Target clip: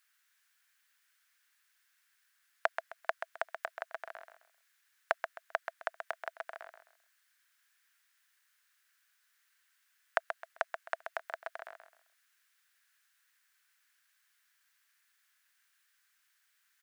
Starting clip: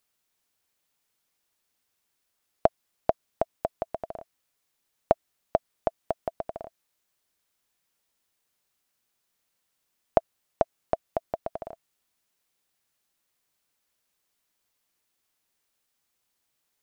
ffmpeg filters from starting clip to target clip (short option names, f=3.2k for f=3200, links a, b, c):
-af "highpass=f=1.6k:t=q:w=4.1,aecho=1:1:131|262|393:0.398|0.107|0.029,volume=1.5dB"